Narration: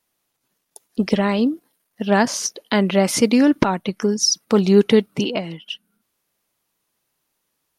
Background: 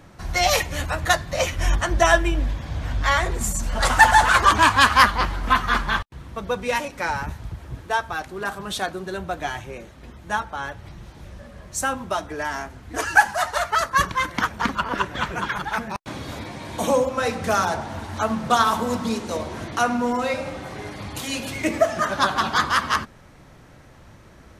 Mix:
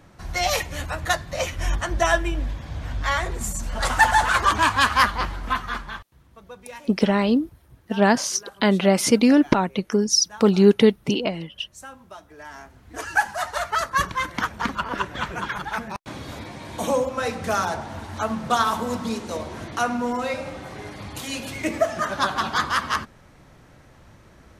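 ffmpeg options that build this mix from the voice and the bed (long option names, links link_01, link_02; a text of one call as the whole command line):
ffmpeg -i stem1.wav -i stem2.wav -filter_complex "[0:a]adelay=5900,volume=-1dB[link_01];[1:a]volume=10.5dB,afade=type=out:start_time=5.27:duration=0.82:silence=0.223872,afade=type=in:start_time=12.28:duration=1.43:silence=0.199526[link_02];[link_01][link_02]amix=inputs=2:normalize=0" out.wav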